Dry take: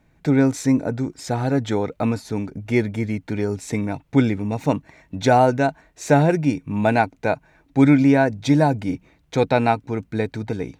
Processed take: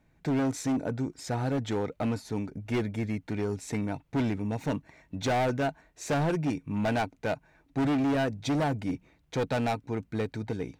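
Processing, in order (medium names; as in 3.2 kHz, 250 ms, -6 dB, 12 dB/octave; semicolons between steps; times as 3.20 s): overload inside the chain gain 17.5 dB; trim -6.5 dB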